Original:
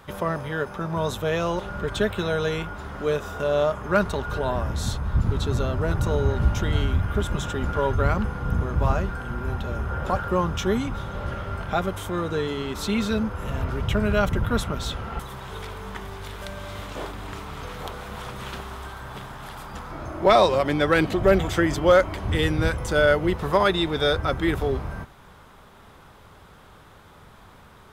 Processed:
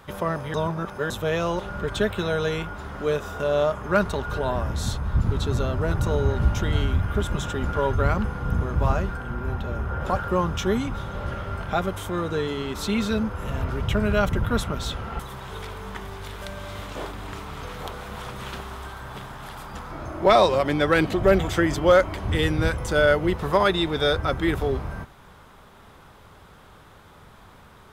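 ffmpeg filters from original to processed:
-filter_complex "[0:a]asettb=1/sr,asplit=3[a][b][c];[a]atrim=end=9.174[d];[b]atrim=start=9.17:end=10.01,asetpts=PTS-STARTPTS,afade=t=in:d=0.004:c=qsin,afade=t=out:st=0.836:d=0.004:c=qsin,equalizer=f=8.2k:w=0.38:g=-5[e];[c]atrim=start=10.006[f];[d][e]acrossfade=d=0.004:c1=hsin:c2=qsin[g];[g][f]acrossfade=d=0.004:c1=qsin:c2=hsin,asplit=3[h][i][j];[h]atrim=end=0.542[k];[i]atrim=start=0.538:end=1.102,asetpts=PTS-STARTPTS,areverse[l];[j]atrim=start=1.098[m];[k][l]acrossfade=d=0.004:c1=hsin:c2=hsin[n];[n][m]acrossfade=d=0.004:c1=hsin:c2=hsin"

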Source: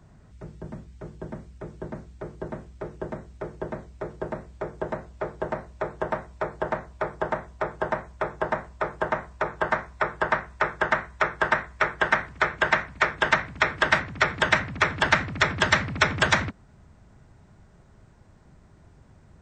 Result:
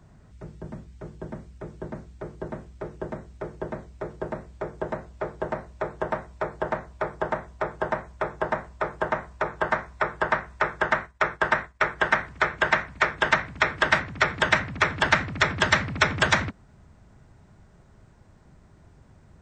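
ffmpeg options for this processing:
-filter_complex "[0:a]asettb=1/sr,asplit=3[a][b][c];[a]atrim=end=10.994[d];[b]atrim=start=10.99:end=11.96,asetpts=PTS-STARTPTS,afade=t=in:d=0.004:c=qsin,afade=t=out:st=0.966:d=0.004:c=qsin,agate=range=-33dB:threshold=-38dB:ratio=3:release=100:detection=peak[e];[c]atrim=start=11.956[f];[d][e]acrossfade=d=0.004:c1=hsin:c2=qsin[g];[g][f]acrossfade=d=0.004:c1=qsin:c2=hsin"

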